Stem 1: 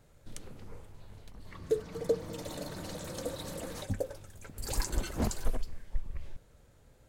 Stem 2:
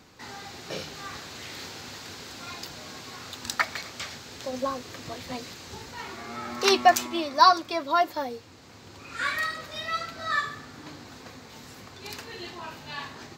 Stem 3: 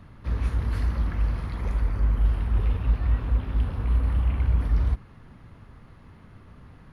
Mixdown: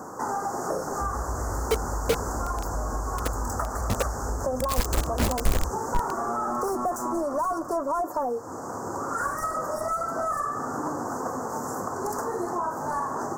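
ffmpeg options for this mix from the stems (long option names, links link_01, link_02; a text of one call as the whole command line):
ffmpeg -i stem1.wav -i stem2.wav -i stem3.wav -filter_complex "[0:a]dynaudnorm=framelen=430:gausssize=7:maxgain=6dB,acrusher=bits=3:mix=0:aa=0.000001,volume=-2dB[link_01];[1:a]asplit=2[link_02][link_03];[link_03]highpass=frequency=720:poles=1,volume=32dB,asoftclip=type=tanh:threshold=-4.5dB[link_04];[link_02][link_04]amix=inputs=2:normalize=0,lowpass=frequency=3100:poles=1,volume=-6dB,volume=-2dB[link_05];[2:a]acompressor=threshold=-21dB:ratio=6,adelay=750,volume=0dB[link_06];[link_05][link_06]amix=inputs=2:normalize=0,asuperstop=centerf=3000:order=8:qfactor=0.55,acompressor=threshold=-26dB:ratio=5,volume=0dB[link_07];[link_01][link_07]amix=inputs=2:normalize=0" out.wav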